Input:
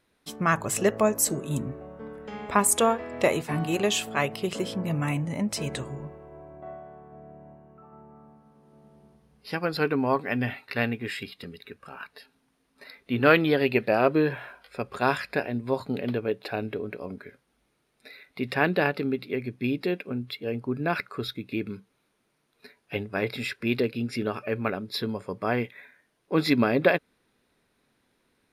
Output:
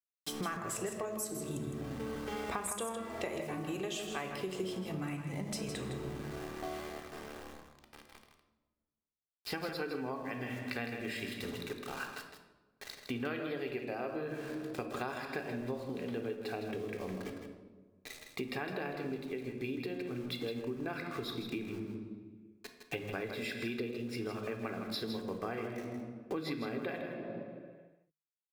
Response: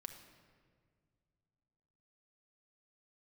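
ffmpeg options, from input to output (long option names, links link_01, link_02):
-filter_complex "[0:a]aeval=exprs='val(0)*gte(abs(val(0)),0.0075)':channel_layout=same,bandreject=frequency=50:width_type=h:width=6,bandreject=frequency=100:width_type=h:width=6,bandreject=frequency=150:width_type=h:width=6,bandreject=frequency=200:width_type=h:width=6[link_01];[1:a]atrim=start_sample=2205,asetrate=88200,aresample=44100[link_02];[link_01][link_02]afir=irnorm=-1:irlink=0,acompressor=threshold=-49dB:ratio=12,asettb=1/sr,asplit=3[link_03][link_04][link_05];[link_03]atrim=end=16.554[link_06];[link_04]atrim=start=16.55:end=18.61,asetpts=PTS-STARTPTS,afade=type=in:duration=0.004:curve=qsin,afade=type=out:start_time=2.056:duration=0.004:curve=qsin,bandreject=frequency=1500:width=8.2[link_07];[link_05]atrim=start=18.606[link_08];[link_06][link_07]acrossfade=duration=0.004:curve1=hsin:curve2=qsin[link_09];[link_09][link_08]acrossfade=duration=0.004:curve1=qsin:curve2=hsin,aecho=1:1:160:0.398,volume=13.5dB"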